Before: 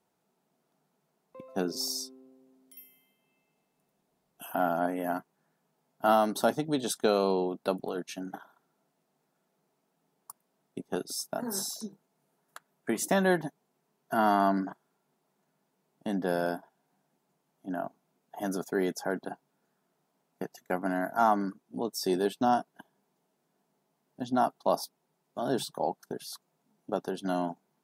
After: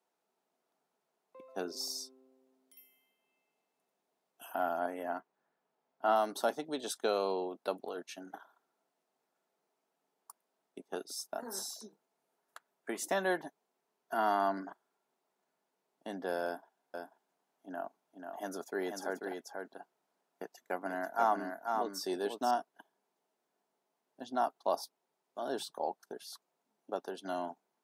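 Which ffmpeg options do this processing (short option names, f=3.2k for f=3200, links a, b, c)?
-filter_complex "[0:a]asettb=1/sr,asplit=3[a][b][c];[a]atrim=end=5.034[d];[b]atrim=start=5.03:end=6.16,asetpts=PTS-STARTPTS,afade=t=in:d=0.004:c=qsin,afade=t=out:st=1.126:d=0.004:c=qsin,aemphasis=mode=reproduction:type=50fm[e];[c]atrim=start=6.156[f];[d][e]acrossfade=d=0.004:c1=hsin:c2=qsin[g];[g][f]acrossfade=d=0.004:c1=qsin:c2=hsin,asettb=1/sr,asplit=3[h][i][j];[h]atrim=end=16.454[k];[i]atrim=start=16.45:end=22.51,asetpts=PTS-STARTPTS,afade=t=in:d=0.004:c=qsin,afade=t=out:st=6.056:d=0.004:c=qsin,aecho=1:1:489:0.562,atrim=end_sample=267246[l];[j]atrim=start=22.506[m];[k][l]acrossfade=d=0.004:c1=hsin:c2=qsin[n];[n][m]acrossfade=d=0.004:c1=qsin:c2=hsin,highpass=370,highshelf=f=9.8k:g=-5.5,volume=-4.5dB"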